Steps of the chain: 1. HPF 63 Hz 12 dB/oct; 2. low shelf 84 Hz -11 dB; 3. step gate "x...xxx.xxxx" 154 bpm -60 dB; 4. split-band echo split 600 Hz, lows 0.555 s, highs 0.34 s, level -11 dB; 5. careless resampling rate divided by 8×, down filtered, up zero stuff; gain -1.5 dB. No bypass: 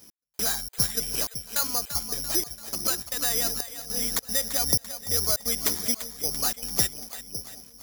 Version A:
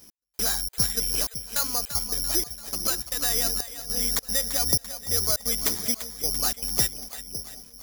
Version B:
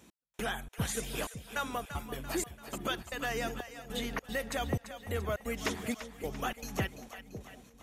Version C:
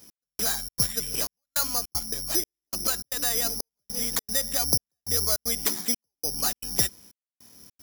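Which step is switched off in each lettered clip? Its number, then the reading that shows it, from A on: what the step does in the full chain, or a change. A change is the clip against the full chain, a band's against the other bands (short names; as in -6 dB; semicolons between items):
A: 1, 4 kHz band +1.5 dB; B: 5, 8 kHz band -16.5 dB; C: 4, momentary loudness spread change -3 LU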